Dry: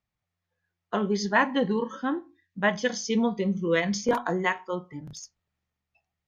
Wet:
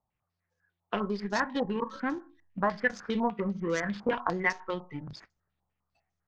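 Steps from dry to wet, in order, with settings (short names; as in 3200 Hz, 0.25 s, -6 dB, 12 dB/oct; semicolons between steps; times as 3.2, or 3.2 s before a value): median filter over 15 samples; 2.69–4.15 bell 1500 Hz +7.5 dB 0.97 oct; compressor 2.5:1, threshold -35 dBFS, peak gain reduction 11.5 dB; in parallel at -5 dB: backlash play -29.5 dBFS; on the sum: stepped low-pass 10 Hz 880–6300 Hz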